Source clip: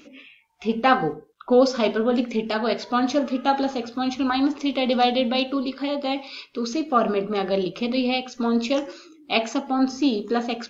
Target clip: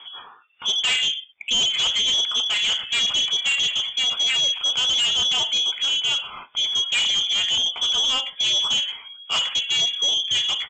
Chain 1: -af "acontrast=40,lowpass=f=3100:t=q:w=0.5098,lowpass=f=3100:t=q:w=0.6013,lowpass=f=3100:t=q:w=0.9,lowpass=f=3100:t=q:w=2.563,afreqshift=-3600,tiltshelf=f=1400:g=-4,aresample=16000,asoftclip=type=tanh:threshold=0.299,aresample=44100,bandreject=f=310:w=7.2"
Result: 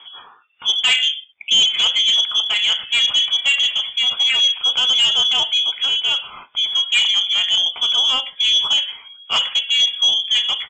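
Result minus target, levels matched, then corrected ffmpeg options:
saturation: distortion -6 dB
-af "acontrast=40,lowpass=f=3100:t=q:w=0.5098,lowpass=f=3100:t=q:w=0.6013,lowpass=f=3100:t=q:w=0.9,lowpass=f=3100:t=q:w=2.563,afreqshift=-3600,tiltshelf=f=1400:g=-4,aresample=16000,asoftclip=type=tanh:threshold=0.119,aresample=44100,bandreject=f=310:w=7.2"

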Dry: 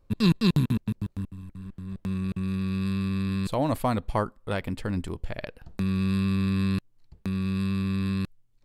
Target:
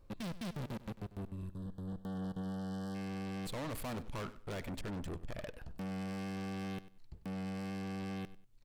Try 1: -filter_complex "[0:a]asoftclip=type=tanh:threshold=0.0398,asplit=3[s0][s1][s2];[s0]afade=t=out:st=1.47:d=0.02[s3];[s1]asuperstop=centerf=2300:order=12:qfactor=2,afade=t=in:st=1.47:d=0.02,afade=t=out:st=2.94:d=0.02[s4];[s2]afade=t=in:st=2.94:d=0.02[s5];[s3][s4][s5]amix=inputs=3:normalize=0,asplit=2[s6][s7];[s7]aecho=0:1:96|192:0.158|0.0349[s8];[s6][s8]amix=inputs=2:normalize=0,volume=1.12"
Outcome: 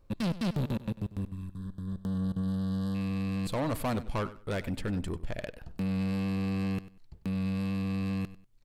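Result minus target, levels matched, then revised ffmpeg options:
saturation: distortion -5 dB
-filter_complex "[0:a]asoftclip=type=tanh:threshold=0.01,asplit=3[s0][s1][s2];[s0]afade=t=out:st=1.47:d=0.02[s3];[s1]asuperstop=centerf=2300:order=12:qfactor=2,afade=t=in:st=1.47:d=0.02,afade=t=out:st=2.94:d=0.02[s4];[s2]afade=t=in:st=2.94:d=0.02[s5];[s3][s4][s5]amix=inputs=3:normalize=0,asplit=2[s6][s7];[s7]aecho=0:1:96|192:0.158|0.0349[s8];[s6][s8]amix=inputs=2:normalize=0,volume=1.12"

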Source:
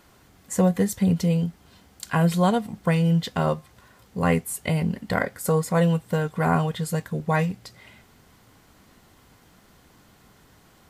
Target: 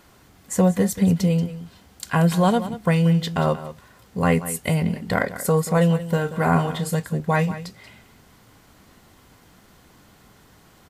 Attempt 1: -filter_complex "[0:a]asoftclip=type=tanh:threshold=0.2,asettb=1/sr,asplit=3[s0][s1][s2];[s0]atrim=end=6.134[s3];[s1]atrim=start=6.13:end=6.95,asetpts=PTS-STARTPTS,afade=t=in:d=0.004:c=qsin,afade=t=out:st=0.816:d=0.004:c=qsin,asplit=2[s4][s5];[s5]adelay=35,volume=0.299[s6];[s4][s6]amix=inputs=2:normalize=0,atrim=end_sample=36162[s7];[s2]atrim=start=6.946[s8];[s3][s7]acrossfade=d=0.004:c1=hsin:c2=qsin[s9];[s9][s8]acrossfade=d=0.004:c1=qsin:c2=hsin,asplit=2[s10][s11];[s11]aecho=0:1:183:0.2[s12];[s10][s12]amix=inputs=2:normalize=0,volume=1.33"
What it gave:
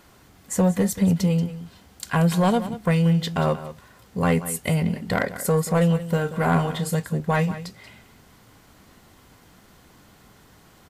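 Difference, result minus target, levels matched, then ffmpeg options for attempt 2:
saturation: distortion +15 dB
-filter_complex "[0:a]asoftclip=type=tanh:threshold=0.596,asettb=1/sr,asplit=3[s0][s1][s2];[s0]atrim=end=6.134[s3];[s1]atrim=start=6.13:end=6.95,asetpts=PTS-STARTPTS,afade=t=in:d=0.004:c=qsin,afade=t=out:st=0.816:d=0.004:c=qsin,asplit=2[s4][s5];[s5]adelay=35,volume=0.299[s6];[s4][s6]amix=inputs=2:normalize=0,atrim=end_sample=36162[s7];[s2]atrim=start=6.946[s8];[s3][s7]acrossfade=d=0.004:c1=hsin:c2=qsin[s9];[s9][s8]acrossfade=d=0.004:c1=qsin:c2=hsin,asplit=2[s10][s11];[s11]aecho=0:1:183:0.2[s12];[s10][s12]amix=inputs=2:normalize=0,volume=1.33"

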